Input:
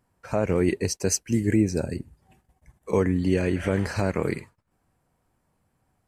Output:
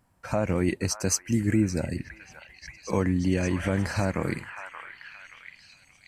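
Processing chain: bell 420 Hz -10 dB 0.32 oct; delay with a stepping band-pass 0.578 s, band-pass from 1300 Hz, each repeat 0.7 oct, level -8 dB; in parallel at +0.5 dB: compressor, threshold -34 dBFS, peak gain reduction 16 dB; on the sum: gain -2.5 dB

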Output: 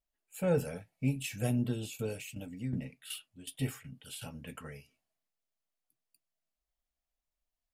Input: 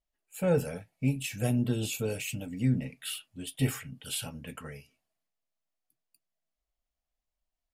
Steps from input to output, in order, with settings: 1.62–4.3 tremolo saw down 2.7 Hz, depth 70%; gain -3 dB

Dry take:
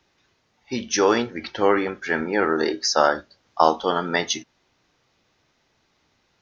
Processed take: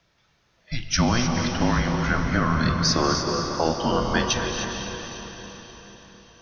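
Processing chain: limiter -10 dBFS, peak gain reduction 8 dB; frequency shift -230 Hz; diffused feedback echo 0.49 s, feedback 46%, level -7.5 dB; non-linear reverb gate 0.33 s rising, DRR 4 dB

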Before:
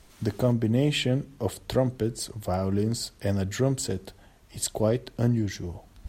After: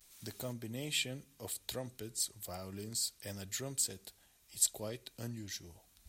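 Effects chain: vibrato 0.33 Hz 25 cents; pre-emphasis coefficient 0.9; small resonant body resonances 2400/3800 Hz, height 8 dB

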